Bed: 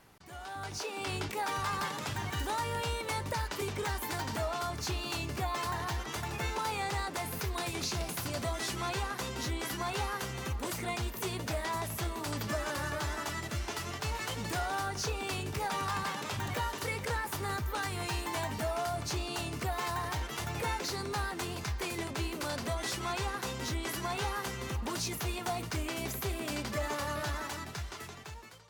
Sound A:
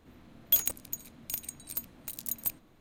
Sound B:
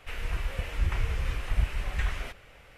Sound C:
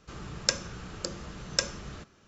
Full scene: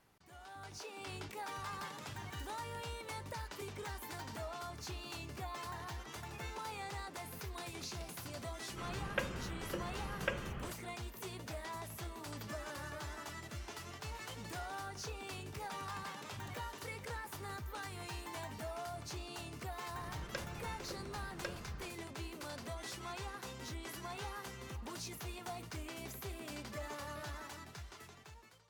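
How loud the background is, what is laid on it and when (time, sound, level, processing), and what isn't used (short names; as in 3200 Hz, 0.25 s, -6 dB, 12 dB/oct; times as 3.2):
bed -10 dB
8.69 add C -2.5 dB + Chebyshev low-pass 3300 Hz, order 8
19.86 add C -9.5 dB + LPF 2300 Hz
not used: A, B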